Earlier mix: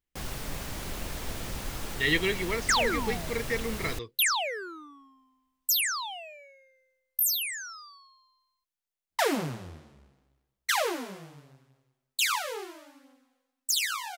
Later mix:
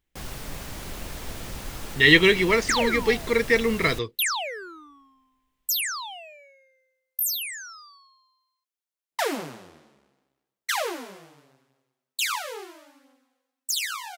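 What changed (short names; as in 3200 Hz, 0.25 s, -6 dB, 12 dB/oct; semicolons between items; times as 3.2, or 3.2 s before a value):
speech +10.5 dB; second sound: add HPF 250 Hz 12 dB/oct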